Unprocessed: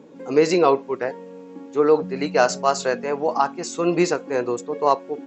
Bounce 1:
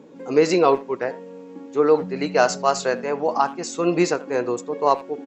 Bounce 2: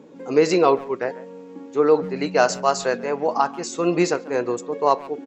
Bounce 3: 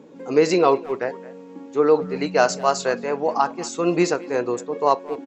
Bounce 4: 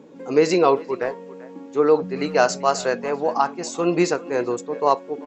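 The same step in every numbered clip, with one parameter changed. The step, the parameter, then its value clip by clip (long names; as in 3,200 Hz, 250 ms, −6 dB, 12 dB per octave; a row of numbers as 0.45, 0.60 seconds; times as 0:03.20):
far-end echo of a speakerphone, delay time: 80, 140, 220, 390 milliseconds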